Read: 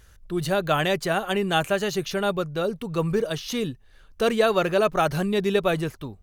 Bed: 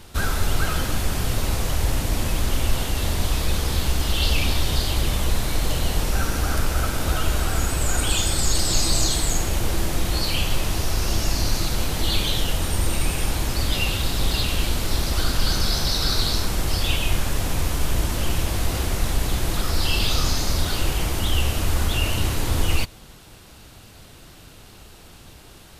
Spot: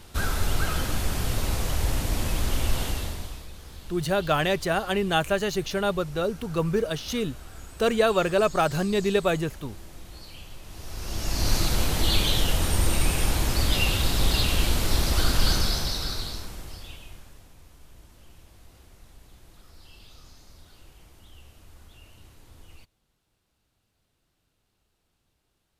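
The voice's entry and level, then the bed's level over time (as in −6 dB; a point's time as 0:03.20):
3.60 s, −1.0 dB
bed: 0:02.89 −3.5 dB
0:03.51 −21 dB
0:10.62 −21 dB
0:11.52 −0.5 dB
0:15.50 −0.5 dB
0:17.54 −29 dB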